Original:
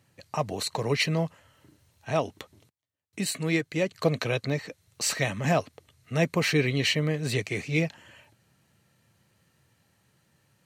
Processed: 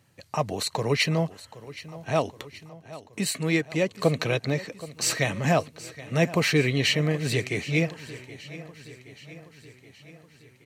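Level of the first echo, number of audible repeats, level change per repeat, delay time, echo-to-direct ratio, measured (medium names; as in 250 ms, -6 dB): -17.0 dB, 4, -4.5 dB, 773 ms, -15.0 dB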